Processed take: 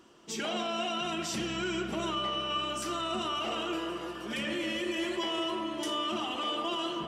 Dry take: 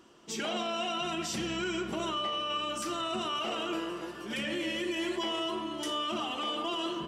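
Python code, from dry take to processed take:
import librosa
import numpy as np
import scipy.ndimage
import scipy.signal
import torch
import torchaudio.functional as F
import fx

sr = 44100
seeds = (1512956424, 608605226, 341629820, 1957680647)

y = fx.echo_wet_lowpass(x, sr, ms=199, feedback_pct=80, hz=3000.0, wet_db=-13)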